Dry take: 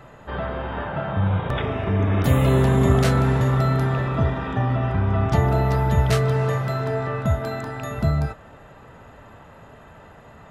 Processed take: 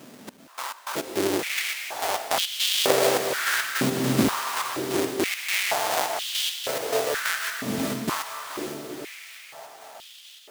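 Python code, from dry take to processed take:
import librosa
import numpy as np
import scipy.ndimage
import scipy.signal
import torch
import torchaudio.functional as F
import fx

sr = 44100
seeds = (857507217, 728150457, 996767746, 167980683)

p1 = fx.halfwave_hold(x, sr)
p2 = fx.high_shelf(p1, sr, hz=2700.0, db=10.5)
p3 = fx.sample_hold(p2, sr, seeds[0], rate_hz=1500.0, jitter_pct=0)
p4 = p2 + (p3 * 10.0 ** (-10.0 / 20.0))
p5 = fx.step_gate(p4, sr, bpm=104, pattern='xx..x.x.xx', floor_db=-24.0, edge_ms=4.5)
p6 = p5 + fx.echo_diffused(p5, sr, ms=480, feedback_pct=56, wet_db=-5.0, dry=0)
p7 = fx.filter_held_highpass(p6, sr, hz=2.1, low_hz=240.0, high_hz=3200.0)
y = p7 * 10.0 ** (-10.0 / 20.0)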